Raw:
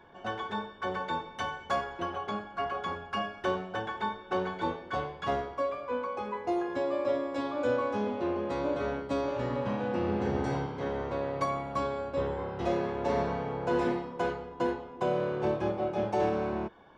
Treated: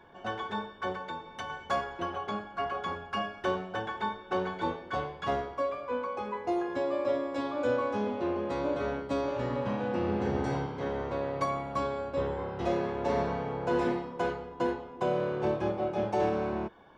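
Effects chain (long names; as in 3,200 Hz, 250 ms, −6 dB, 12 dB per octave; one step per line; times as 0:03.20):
0:00.92–0:01.50: downward compressor 3 to 1, threshold −37 dBFS, peak gain reduction 7 dB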